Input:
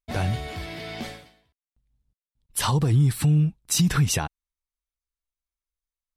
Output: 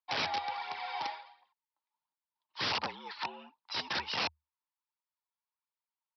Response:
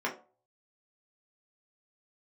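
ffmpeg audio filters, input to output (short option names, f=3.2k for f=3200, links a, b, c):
-af "highpass=f=840:t=q:w=9.2,aphaser=in_gain=1:out_gain=1:delay=4.2:decay=0.54:speed=1.4:type=triangular,aresample=11025,aeval=exprs='(mod(10*val(0)+1,2)-1)/10':c=same,aresample=44100,afreqshift=76,volume=-7dB"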